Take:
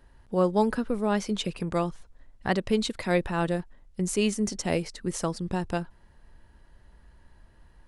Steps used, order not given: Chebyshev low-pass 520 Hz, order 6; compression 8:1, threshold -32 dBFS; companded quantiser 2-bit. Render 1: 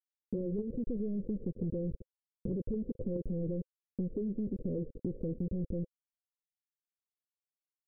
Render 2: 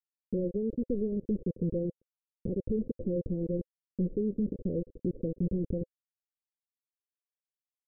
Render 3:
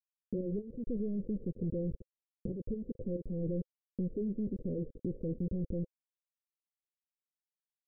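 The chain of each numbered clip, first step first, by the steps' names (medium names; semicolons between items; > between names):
companded quantiser > Chebyshev low-pass > compression; compression > companded quantiser > Chebyshev low-pass; companded quantiser > compression > Chebyshev low-pass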